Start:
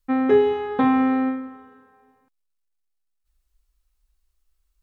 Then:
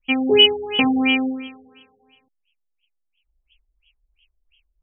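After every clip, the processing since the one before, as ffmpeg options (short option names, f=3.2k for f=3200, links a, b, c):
-af "aexciter=amount=15.9:drive=9.1:freq=3.1k,highshelf=f=1.9k:t=q:w=3:g=10.5,afftfilt=real='re*lt(b*sr/1024,720*pow(3400/720,0.5+0.5*sin(2*PI*2.9*pts/sr)))':imag='im*lt(b*sr/1024,720*pow(3400/720,0.5+0.5*sin(2*PI*2.9*pts/sr)))':win_size=1024:overlap=0.75"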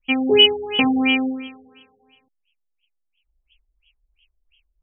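-af anull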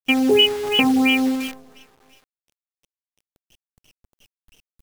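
-af "acompressor=threshold=-22dB:ratio=2.5,acrusher=bits=7:dc=4:mix=0:aa=0.000001,volume=6dB"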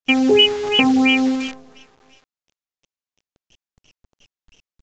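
-af "aresample=16000,aresample=44100,volume=2dB"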